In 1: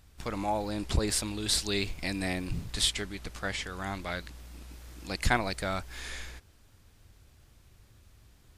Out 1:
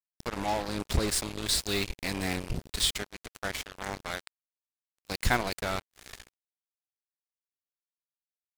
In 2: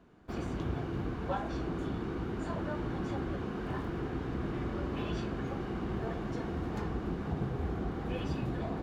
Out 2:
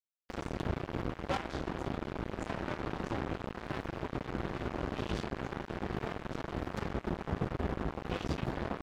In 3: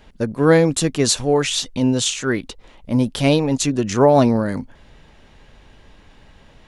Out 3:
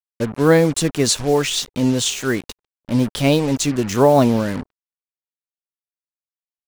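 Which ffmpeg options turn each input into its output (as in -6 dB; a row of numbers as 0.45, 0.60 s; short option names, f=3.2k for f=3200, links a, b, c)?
-af "aeval=exprs='val(0)+0.00251*sin(2*PI*410*n/s)':c=same,acrusher=bits=4:mix=0:aa=0.5"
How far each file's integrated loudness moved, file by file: +0.5, -1.5, 0.0 LU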